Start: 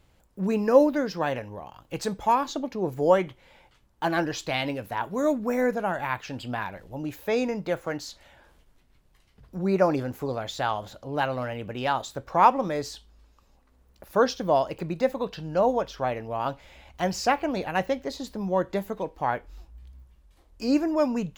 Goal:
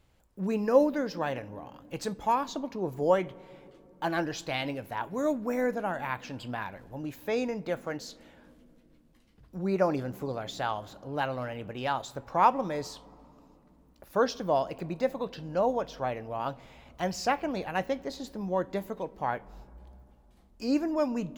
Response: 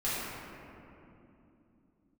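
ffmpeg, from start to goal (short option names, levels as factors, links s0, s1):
-filter_complex "[0:a]asplit=2[s0][s1];[1:a]atrim=start_sample=2205,lowshelf=f=460:g=6.5[s2];[s1][s2]afir=irnorm=-1:irlink=0,volume=0.0251[s3];[s0][s3]amix=inputs=2:normalize=0,volume=0.596"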